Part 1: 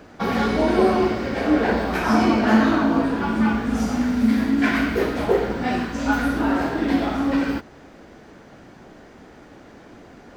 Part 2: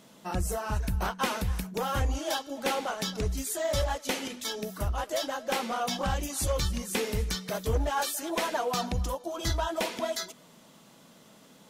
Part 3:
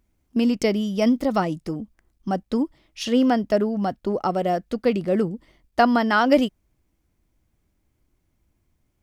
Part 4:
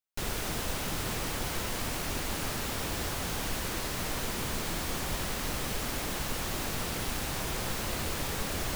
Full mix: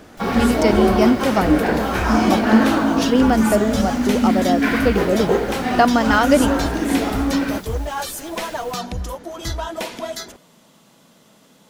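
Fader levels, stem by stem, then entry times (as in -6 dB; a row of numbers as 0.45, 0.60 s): +1.0, +3.0, +2.5, -10.0 dB; 0.00, 0.00, 0.00, 0.00 s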